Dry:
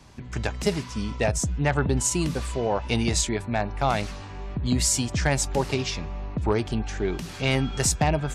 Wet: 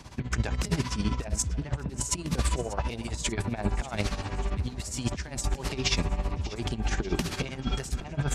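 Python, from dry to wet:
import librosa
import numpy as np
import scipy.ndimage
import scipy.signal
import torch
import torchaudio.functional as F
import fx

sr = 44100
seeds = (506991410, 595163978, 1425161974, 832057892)

p1 = fx.over_compress(x, sr, threshold_db=-29.0, ratio=-0.5)
p2 = p1 * (1.0 - 0.77 / 2.0 + 0.77 / 2.0 * np.cos(2.0 * np.pi * 15.0 * (np.arange(len(p1)) / sr)))
p3 = p2 + fx.echo_alternate(p2, sr, ms=295, hz=1500.0, feedback_pct=76, wet_db=-14.0, dry=0)
y = p3 * 10.0 ** (3.5 / 20.0)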